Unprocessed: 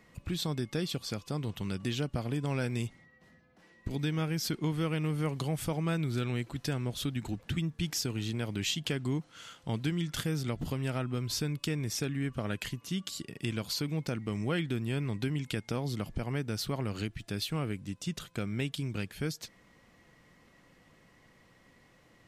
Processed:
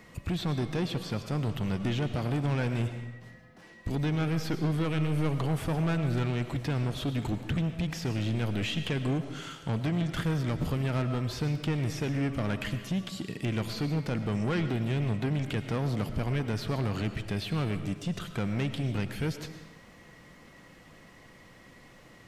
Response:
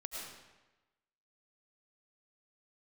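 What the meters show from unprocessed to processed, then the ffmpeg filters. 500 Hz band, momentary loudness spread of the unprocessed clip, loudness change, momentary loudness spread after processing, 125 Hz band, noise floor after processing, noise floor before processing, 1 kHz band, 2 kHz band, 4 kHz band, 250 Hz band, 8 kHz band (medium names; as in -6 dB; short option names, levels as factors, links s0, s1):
+3.0 dB, 5 LU, +3.0 dB, 5 LU, +4.5 dB, -54 dBFS, -63 dBFS, +4.5 dB, +2.5 dB, -2.0 dB, +3.5 dB, -6.5 dB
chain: -filter_complex "[0:a]acrossover=split=2700[s0][s1];[s1]acompressor=threshold=0.00224:ratio=4:attack=1:release=60[s2];[s0][s2]amix=inputs=2:normalize=0,asoftclip=type=tanh:threshold=0.0237,asplit=2[s3][s4];[1:a]atrim=start_sample=2205[s5];[s4][s5]afir=irnorm=-1:irlink=0,volume=0.668[s6];[s3][s6]amix=inputs=2:normalize=0,volume=1.78"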